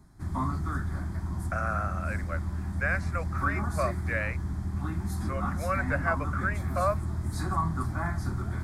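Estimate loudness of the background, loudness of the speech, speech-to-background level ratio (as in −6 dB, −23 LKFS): −32.5 LKFS, −33.0 LKFS, −0.5 dB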